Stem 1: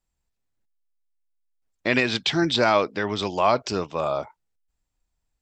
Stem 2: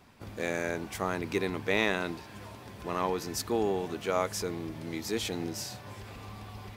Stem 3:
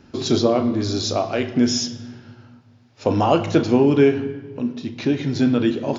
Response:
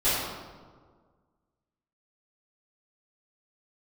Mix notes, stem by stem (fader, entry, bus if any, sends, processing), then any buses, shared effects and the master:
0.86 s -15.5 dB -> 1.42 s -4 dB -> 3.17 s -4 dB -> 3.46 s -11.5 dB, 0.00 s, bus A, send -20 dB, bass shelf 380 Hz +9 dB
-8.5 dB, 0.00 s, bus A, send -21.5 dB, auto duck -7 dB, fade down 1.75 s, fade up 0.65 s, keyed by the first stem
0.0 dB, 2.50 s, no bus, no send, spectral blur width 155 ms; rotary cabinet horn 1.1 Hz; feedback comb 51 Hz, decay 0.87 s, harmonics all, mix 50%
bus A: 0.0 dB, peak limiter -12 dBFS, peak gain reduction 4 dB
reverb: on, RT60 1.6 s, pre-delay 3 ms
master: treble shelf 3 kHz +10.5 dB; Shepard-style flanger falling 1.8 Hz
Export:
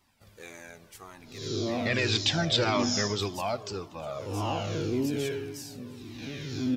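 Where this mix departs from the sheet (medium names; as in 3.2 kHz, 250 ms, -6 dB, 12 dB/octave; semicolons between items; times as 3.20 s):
stem 3: entry 2.50 s -> 1.20 s; reverb return -9.5 dB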